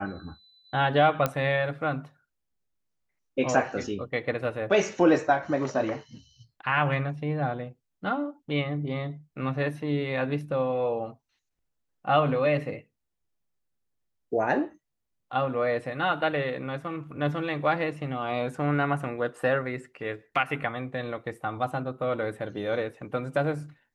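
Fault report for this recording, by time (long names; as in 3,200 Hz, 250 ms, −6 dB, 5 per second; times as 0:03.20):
0:01.26: click −11 dBFS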